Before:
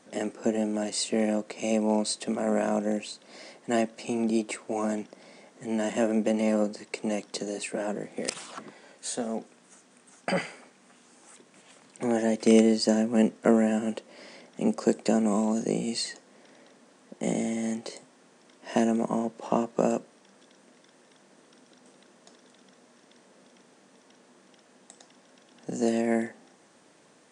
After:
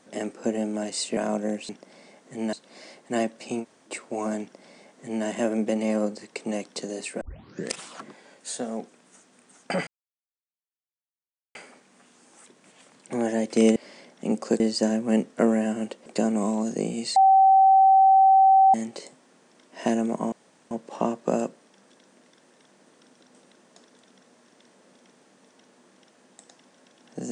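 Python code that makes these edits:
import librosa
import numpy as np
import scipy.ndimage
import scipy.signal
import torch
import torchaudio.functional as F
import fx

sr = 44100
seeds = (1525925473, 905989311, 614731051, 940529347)

y = fx.edit(x, sr, fx.cut(start_s=1.17, length_s=1.42),
    fx.room_tone_fill(start_s=4.2, length_s=0.27, crossfade_s=0.06),
    fx.duplicate(start_s=4.99, length_s=0.84, to_s=3.11),
    fx.tape_start(start_s=7.79, length_s=0.5),
    fx.insert_silence(at_s=10.45, length_s=1.68),
    fx.move(start_s=14.12, length_s=0.84, to_s=12.66),
    fx.bleep(start_s=16.06, length_s=1.58, hz=771.0, db=-12.5),
    fx.insert_room_tone(at_s=19.22, length_s=0.39), tone=tone)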